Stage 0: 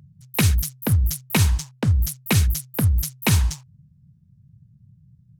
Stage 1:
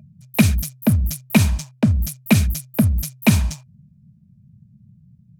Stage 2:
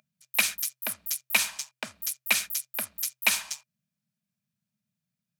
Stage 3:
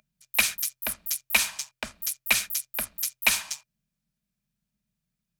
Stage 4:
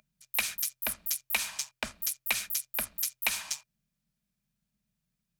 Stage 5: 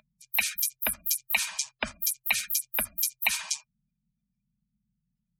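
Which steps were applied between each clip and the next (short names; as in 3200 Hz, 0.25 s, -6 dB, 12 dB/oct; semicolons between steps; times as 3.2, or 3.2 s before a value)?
small resonant body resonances 220/620/2400 Hz, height 13 dB, ringing for 45 ms; gain -1 dB
HPF 1300 Hz 12 dB/oct
octaver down 2 oct, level -4 dB; gain +1.5 dB
compressor 10:1, threshold -25 dBFS, peak gain reduction 10.5 dB
spectral gate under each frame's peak -15 dB strong; gain +4.5 dB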